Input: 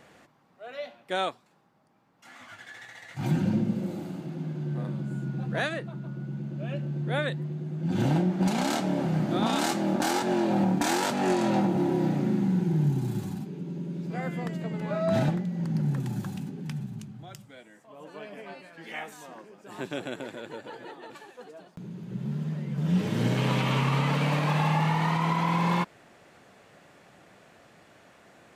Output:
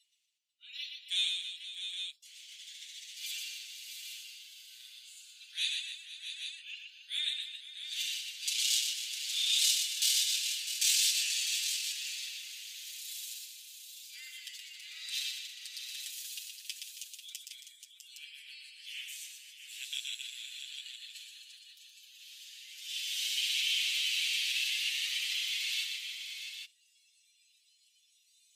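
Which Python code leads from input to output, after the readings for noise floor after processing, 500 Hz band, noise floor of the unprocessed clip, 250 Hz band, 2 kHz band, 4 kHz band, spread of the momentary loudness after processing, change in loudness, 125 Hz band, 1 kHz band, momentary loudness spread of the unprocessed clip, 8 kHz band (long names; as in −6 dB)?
−69 dBFS, below −40 dB, −58 dBFS, below −40 dB, −3.5 dB, +9.0 dB, 20 LU, −4.5 dB, below −40 dB, below −40 dB, 19 LU, +9.0 dB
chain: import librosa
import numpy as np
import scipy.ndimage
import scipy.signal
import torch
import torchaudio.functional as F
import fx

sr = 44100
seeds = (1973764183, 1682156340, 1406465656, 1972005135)

p1 = fx.spec_clip(x, sr, under_db=12)
p2 = fx.noise_reduce_blind(p1, sr, reduce_db=20)
p3 = scipy.signal.sosfilt(scipy.signal.butter(6, 2800.0, 'highpass', fs=sr, output='sos'), p2)
p4 = p3 + 0.82 * np.pad(p3, (int(7.2 * sr / 1000.0), 0))[:len(p3)]
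p5 = p4 + fx.echo_multitap(p4, sr, ms=(121, 273, 491, 653, 814), db=(-5.0, -11.5, -14.5, -9.5, -8.5), dry=0)
y = p5 * librosa.db_to_amplitude(1.0)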